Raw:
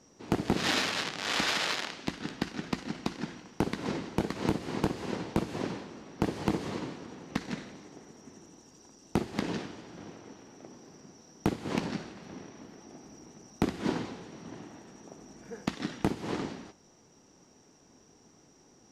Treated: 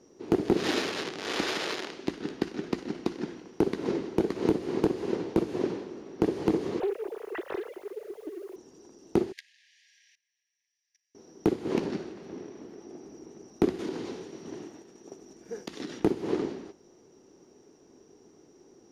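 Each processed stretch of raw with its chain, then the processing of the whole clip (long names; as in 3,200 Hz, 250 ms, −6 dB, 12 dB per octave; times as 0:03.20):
0:06.80–0:08.56: three sine waves on the formant tracks + bit-depth reduction 10 bits, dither triangular + highs frequency-modulated by the lows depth 0.68 ms
0:09.32–0:11.15: linear-phase brick-wall high-pass 1,600 Hz + output level in coarse steps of 20 dB
0:13.78–0:16.00: high-shelf EQ 2,600 Hz +8.5 dB + downward compressor, threshold −34 dBFS + downward expander −45 dBFS
whole clip: parametric band 380 Hz +13.5 dB 0.88 octaves; notch filter 7,800 Hz, Q 9.5; level −3.5 dB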